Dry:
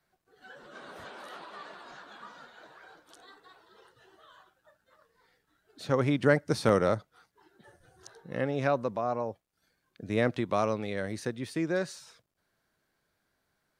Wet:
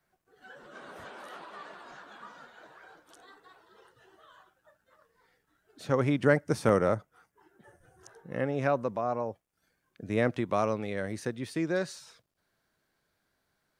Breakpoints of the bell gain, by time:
bell 4100 Hz 0.6 oct
6.28 s -5 dB
6.82 s -13.5 dB
8.12 s -13.5 dB
8.89 s -5.5 dB
11.11 s -5.5 dB
11.62 s +1 dB

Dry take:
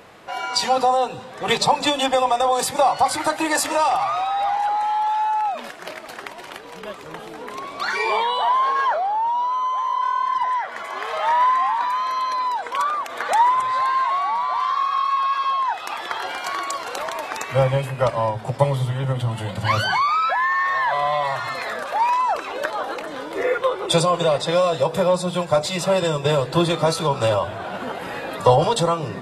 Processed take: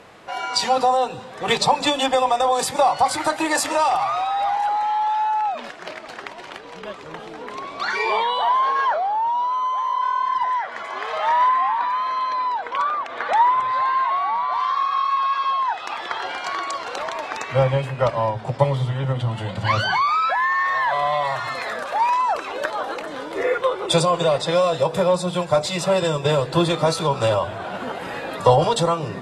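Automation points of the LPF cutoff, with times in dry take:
11000 Hz
from 4.79 s 6600 Hz
from 11.48 s 3700 Hz
from 14.52 s 6200 Hz
from 20.07 s 11000 Hz

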